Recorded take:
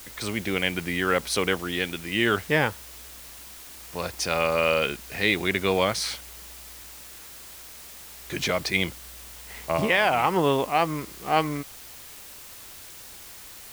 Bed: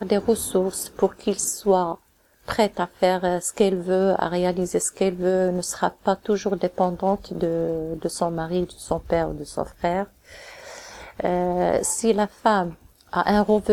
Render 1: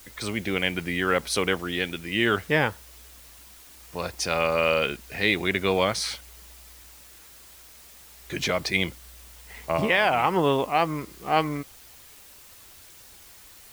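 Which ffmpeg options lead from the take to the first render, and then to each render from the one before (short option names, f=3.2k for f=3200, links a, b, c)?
-af "afftdn=nr=6:nf=-44"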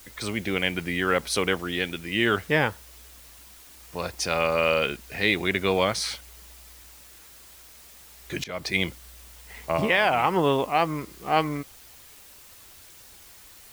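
-filter_complex "[0:a]asplit=2[a][b];[a]atrim=end=8.44,asetpts=PTS-STARTPTS,afade=t=out:st=8.436:d=0.004:c=hsin:silence=0.0794328[c];[b]atrim=start=8.44,asetpts=PTS-STARTPTS,afade=t=in:d=0.43:c=qsin:silence=0.0794328[d];[c][d]concat=n=2:v=0:a=1"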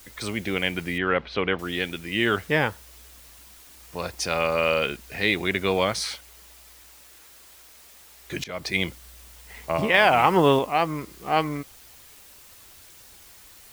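-filter_complex "[0:a]asettb=1/sr,asplit=3[a][b][c];[a]atrim=end=0.984[d];[b]atrim=start=0.98:end=1.59,asetpts=PTS-STARTPTS,afade=t=in:d=0.004:c=qsin,afade=t=out:st=0.606:d=0.004:c=qsin,lowpass=f=3.3k:w=0.5412,lowpass=f=3.3k:w=1.3066[e];[c]atrim=start=1.586[f];[d][e]acrossfade=d=0.004:c1=hsin:c2=qsin[g];[g][f]acrossfade=d=0.004:c1=qsin:c2=hsin,asettb=1/sr,asplit=3[h][i][j];[h]atrim=end=6.044[k];[i]atrim=start=6.04:end=8.31,asetpts=PTS-STARTPTS,afade=t=in:d=0.004:c=qsin,afade=t=out:st=2.266:d=0.004:c=qsin,bass=f=250:g=-6,treble=f=4k:g=-1[l];[j]atrim=start=8.306[m];[k][l]acrossfade=d=0.004:c1=hsin:c2=qsin[n];[n][m]acrossfade=d=0.004:c1=qsin:c2=hsin,asplit=3[o][p][q];[o]atrim=end=9.942[r];[p]atrim=start=9.938:end=10.592,asetpts=PTS-STARTPTS,volume=4dB[s];[q]atrim=start=10.588[t];[r][s]acrossfade=d=0.004:c1=hsin:c2=hsin[u];[u][t]acrossfade=d=0.004:c1=hsin:c2=hsin"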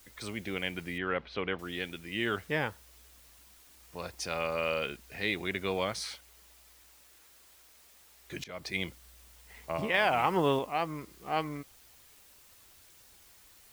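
-af "volume=-9dB"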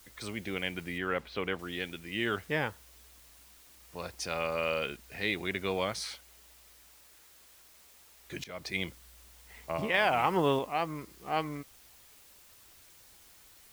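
-af "acrusher=bits=9:mix=0:aa=0.000001"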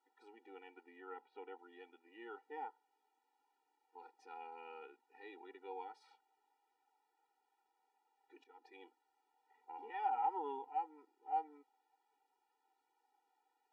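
-af "bandpass=f=740:t=q:w=5.3:csg=0,afftfilt=real='re*eq(mod(floor(b*sr/1024/250),2),1)':imag='im*eq(mod(floor(b*sr/1024/250),2),1)':win_size=1024:overlap=0.75"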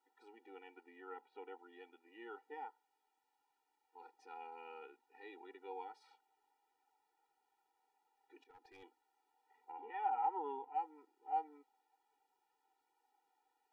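-filter_complex "[0:a]asettb=1/sr,asplit=3[a][b][c];[a]atrim=end=2.544[d];[b]atrim=start=2.54:end=4,asetpts=PTS-STARTPTS,afade=t=in:d=0.004:c=qsin,afade=t=out:st=1.456:d=0.004:c=qsin,equalizer=f=360:t=o:w=2.5:g=-4[e];[c]atrim=start=3.996[f];[d][e]acrossfade=d=0.004:c1=hsin:c2=qsin[g];[g][f]acrossfade=d=0.004:c1=qsin:c2=hsin,asettb=1/sr,asplit=3[h][i][j];[h]atrim=end=8.424[k];[i]atrim=start=8.42:end=8.83,asetpts=PTS-STARTPTS,afade=t=in:d=0.004:c=qsin,afade=t=out:st=0.406:d=0.004:c=qsin,aeval=exprs='clip(val(0),-1,0.001)':c=same[l];[j]atrim=start=8.826[m];[k][l]acrossfade=d=0.004:c1=hsin:c2=qsin[n];[n][m]acrossfade=d=0.004:c1=qsin:c2=hsin,asettb=1/sr,asplit=3[o][p][q];[o]atrim=end=9.724[r];[p]atrim=start=9.72:end=10.75,asetpts=PTS-STARTPTS,afade=t=in:d=0.004:c=qsin,afade=t=out:st=1.026:d=0.004:c=qsin,highpass=190,lowpass=2.8k[s];[q]atrim=start=10.746[t];[r][s]acrossfade=d=0.004:c1=hsin:c2=qsin[u];[u][t]acrossfade=d=0.004:c1=qsin:c2=hsin"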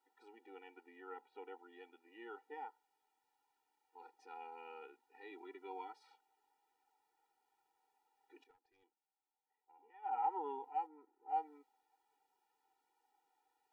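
-filter_complex "[0:a]asettb=1/sr,asplit=3[a][b][c];[a]atrim=end=5.314[d];[b]atrim=start=5.31:end=5.93,asetpts=PTS-STARTPTS,afade=t=in:d=0.004:c=qsin,afade=t=out:st=0.616:d=0.004:c=qsin,aecho=1:1:3:0.7,atrim=end_sample=27342[e];[c]atrim=start=5.926[f];[d][e]acrossfade=d=0.004:c1=hsin:c2=qsin[g];[g][f]acrossfade=d=0.004:c1=qsin:c2=hsin,asplit=3[h][i][j];[h]afade=t=out:st=10.86:d=0.02[k];[i]lowpass=1.5k,afade=t=in:st=10.86:d=0.02,afade=t=out:st=11.28:d=0.02[l];[j]afade=t=in:st=11.28:d=0.02[m];[k][l][m]amix=inputs=3:normalize=0,asplit=3[n][o][p];[n]atrim=end=8.57,asetpts=PTS-STARTPTS,afade=t=out:st=8.45:d=0.12:silence=0.149624[q];[o]atrim=start=8.57:end=10.02,asetpts=PTS-STARTPTS,volume=-16.5dB[r];[p]atrim=start=10.02,asetpts=PTS-STARTPTS,afade=t=in:d=0.12:silence=0.149624[s];[q][r][s]concat=n=3:v=0:a=1"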